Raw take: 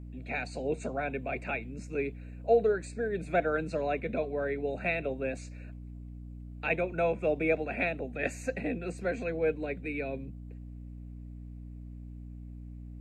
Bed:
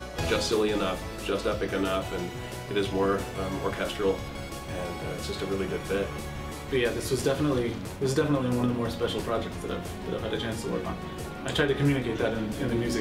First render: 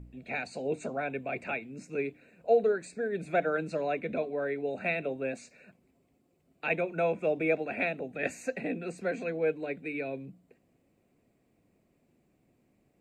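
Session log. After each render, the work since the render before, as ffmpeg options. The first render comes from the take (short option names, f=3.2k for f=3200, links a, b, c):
-af "bandreject=f=60:t=h:w=4,bandreject=f=120:t=h:w=4,bandreject=f=180:t=h:w=4,bandreject=f=240:t=h:w=4,bandreject=f=300:t=h:w=4"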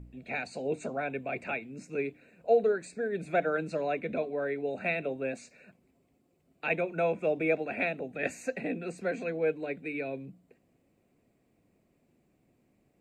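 -af anull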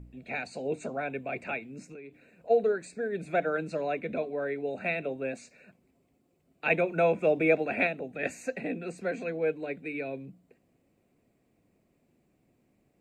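-filter_complex "[0:a]asplit=3[a][b][c];[a]afade=t=out:st=1.81:d=0.02[d];[b]acompressor=threshold=-41dB:ratio=16:attack=3.2:release=140:knee=1:detection=peak,afade=t=in:st=1.81:d=0.02,afade=t=out:st=2.49:d=0.02[e];[c]afade=t=in:st=2.49:d=0.02[f];[d][e][f]amix=inputs=3:normalize=0,asplit=3[g][h][i];[g]atrim=end=6.662[j];[h]atrim=start=6.658:end=7.872,asetpts=PTS-STARTPTS,volume=4dB[k];[i]atrim=start=7.868[l];[j][k]acrossfade=d=0.004:c1=hsin:c2=hsin[m];[m][l]acrossfade=d=0.004:c1=hsin:c2=hsin"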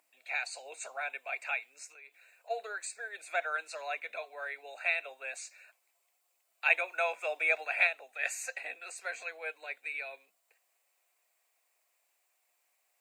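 -af "highpass=f=800:w=0.5412,highpass=f=800:w=1.3066,highshelf=f=5k:g=12"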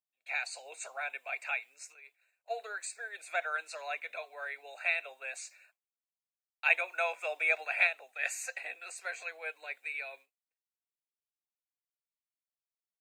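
-af "agate=range=-33dB:threshold=-51dB:ratio=3:detection=peak,lowshelf=f=320:g=-8"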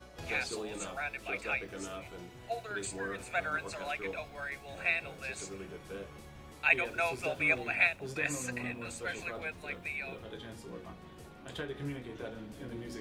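-filter_complex "[1:a]volume=-15dB[a];[0:a][a]amix=inputs=2:normalize=0"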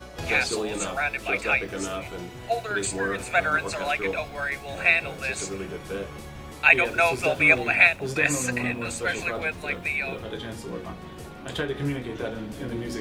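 -af "volume=11dB,alimiter=limit=-3dB:level=0:latency=1"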